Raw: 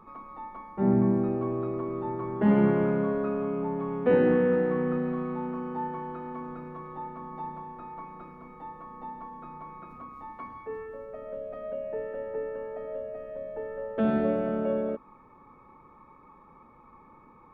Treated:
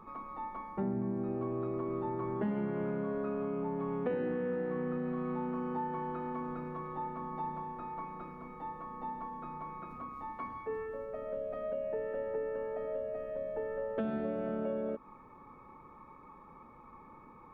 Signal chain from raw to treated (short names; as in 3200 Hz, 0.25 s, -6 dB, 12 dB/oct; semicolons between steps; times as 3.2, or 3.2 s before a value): compressor 6:1, threshold -32 dBFS, peak gain reduction 14 dB